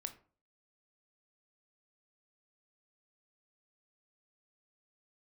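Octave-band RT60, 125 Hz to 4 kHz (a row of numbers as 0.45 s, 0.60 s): 0.50 s, 0.45 s, 0.45 s, 0.40 s, 0.30 s, 0.25 s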